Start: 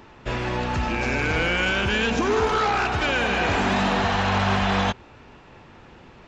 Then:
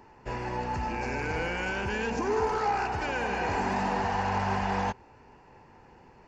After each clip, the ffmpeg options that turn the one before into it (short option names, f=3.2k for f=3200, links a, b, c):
-af "superequalizer=7b=1.41:9b=2:10b=0.708:12b=0.708:13b=0.282,volume=-8.5dB"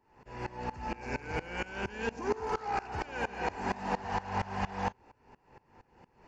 -af "aeval=exprs='val(0)*pow(10,-22*if(lt(mod(-4.3*n/s,1),2*abs(-4.3)/1000),1-mod(-4.3*n/s,1)/(2*abs(-4.3)/1000),(mod(-4.3*n/s,1)-2*abs(-4.3)/1000)/(1-2*abs(-4.3)/1000))/20)':c=same,volume=1dB"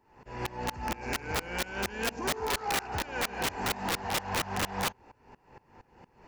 -af "aeval=exprs='(mod(21.1*val(0)+1,2)-1)/21.1':c=same,volume=3.5dB"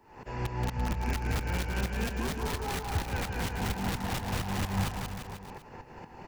-filter_complex "[0:a]acrossover=split=190[a][b];[b]acompressor=threshold=-48dB:ratio=3[c];[a][c]amix=inputs=2:normalize=0,asplit=2[d][e];[e]aecho=0:1:180|342|487.8|619|737.1:0.631|0.398|0.251|0.158|0.1[f];[d][f]amix=inputs=2:normalize=0,volume=7.5dB"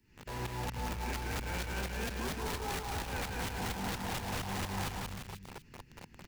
-filter_complex "[0:a]acrossover=split=300|1900[a][b][c];[a]asoftclip=type=tanh:threshold=-33dB[d];[b]acrusher=bits=6:mix=0:aa=0.000001[e];[d][e][c]amix=inputs=3:normalize=0,volume=-3dB"